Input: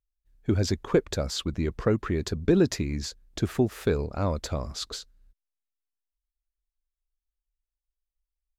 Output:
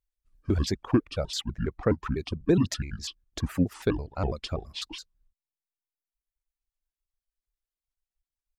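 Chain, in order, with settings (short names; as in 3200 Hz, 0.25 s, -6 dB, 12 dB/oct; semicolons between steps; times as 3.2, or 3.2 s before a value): trilling pitch shifter -6 st, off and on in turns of 83 ms; reverb removal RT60 1.4 s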